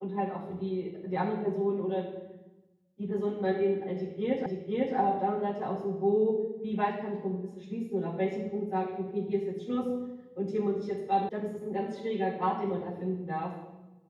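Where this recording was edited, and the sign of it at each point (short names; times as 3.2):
4.46 repeat of the last 0.5 s
11.29 sound cut off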